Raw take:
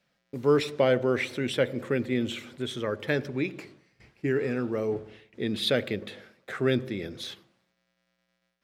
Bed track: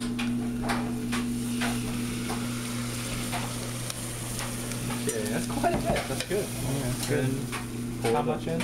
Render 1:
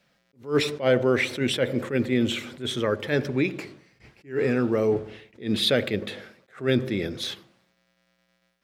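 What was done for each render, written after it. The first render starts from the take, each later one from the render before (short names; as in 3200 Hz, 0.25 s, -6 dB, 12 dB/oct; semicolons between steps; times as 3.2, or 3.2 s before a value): in parallel at +1.5 dB: limiter -21.5 dBFS, peak gain reduction 11 dB; on the sum: attack slew limiter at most 210 dB/s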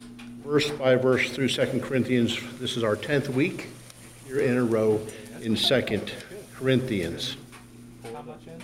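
add bed track -13 dB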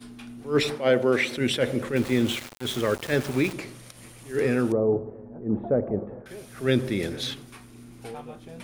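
0.75–1.37 HPF 150 Hz; 1.96–3.53 sample gate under -32 dBFS; 4.72–6.26 inverse Chebyshev low-pass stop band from 5500 Hz, stop band 80 dB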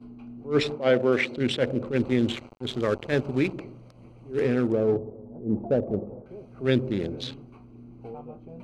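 Wiener smoothing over 25 samples; LPF 6500 Hz 12 dB/oct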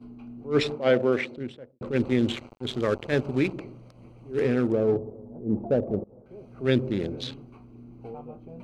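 0.92–1.81 studio fade out; 6.04–6.48 fade in, from -21.5 dB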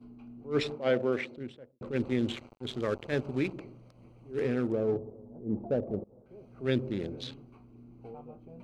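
gain -6 dB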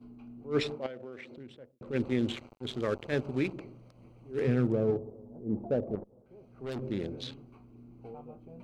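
0.86–1.89 compressor 4:1, threshold -43 dBFS; 4.47–4.91 bell 140 Hz +11 dB; 5.95–6.82 tube stage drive 33 dB, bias 0.6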